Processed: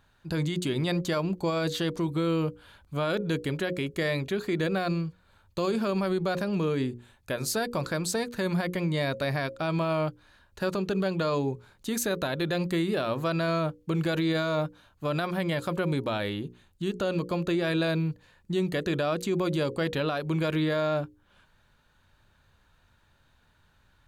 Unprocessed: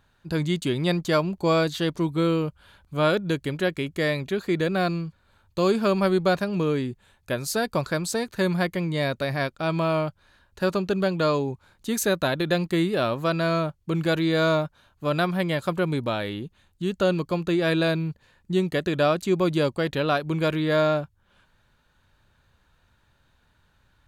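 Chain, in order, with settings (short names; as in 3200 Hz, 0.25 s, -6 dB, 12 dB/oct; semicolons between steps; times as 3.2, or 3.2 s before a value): notches 60/120/180/240/300/360/420/480/540 Hz; limiter -19.5 dBFS, peak gain reduction 9.5 dB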